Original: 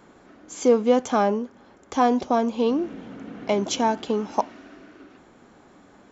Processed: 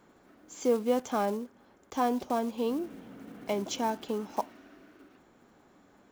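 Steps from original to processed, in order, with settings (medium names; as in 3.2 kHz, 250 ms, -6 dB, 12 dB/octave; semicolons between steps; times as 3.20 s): block-companded coder 5-bit; trim -8.5 dB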